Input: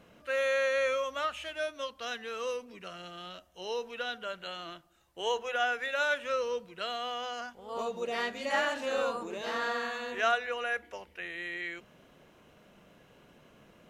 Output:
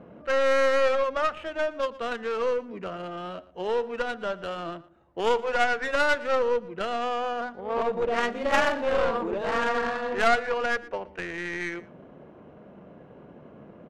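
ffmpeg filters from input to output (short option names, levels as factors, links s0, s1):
-filter_complex "[0:a]highpass=f=150:p=1,highshelf=f=9100:g=10.5,asplit=2[s0][s1];[s1]acompressor=threshold=0.00891:ratio=6,volume=1[s2];[s0][s2]amix=inputs=2:normalize=0,aeval=exprs='clip(val(0),-1,0.0224)':c=same,adynamicsmooth=sensitivity=2:basefreq=830,asplit=2[s3][s4];[s4]adelay=116.6,volume=0.112,highshelf=f=4000:g=-2.62[s5];[s3][s5]amix=inputs=2:normalize=0,volume=2.66"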